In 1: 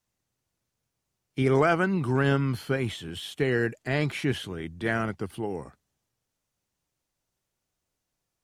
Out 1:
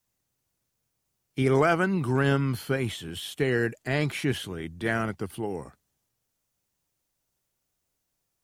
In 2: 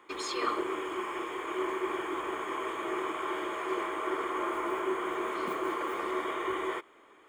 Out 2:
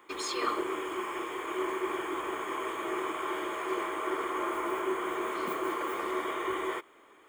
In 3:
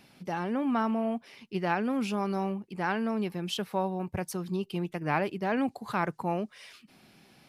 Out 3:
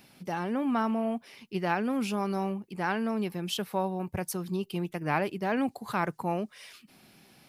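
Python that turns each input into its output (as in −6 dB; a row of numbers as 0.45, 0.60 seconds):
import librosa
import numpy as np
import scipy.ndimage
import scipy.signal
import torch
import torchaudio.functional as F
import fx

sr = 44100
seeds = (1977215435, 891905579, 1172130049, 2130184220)

y = fx.high_shelf(x, sr, hz=10000.0, db=10.0)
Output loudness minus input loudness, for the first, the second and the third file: 0.0, 0.0, 0.0 LU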